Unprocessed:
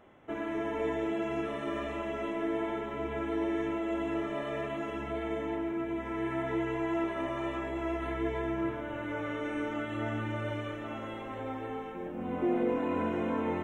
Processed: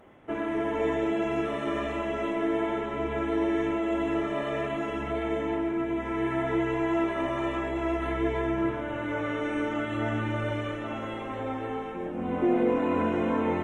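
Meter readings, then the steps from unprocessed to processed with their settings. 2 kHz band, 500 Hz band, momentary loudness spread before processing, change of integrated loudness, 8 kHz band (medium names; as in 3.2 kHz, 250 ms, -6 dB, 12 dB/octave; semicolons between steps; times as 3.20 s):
+5.0 dB, +5.0 dB, 7 LU, +5.0 dB, no reading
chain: trim +5 dB; Opus 32 kbps 48 kHz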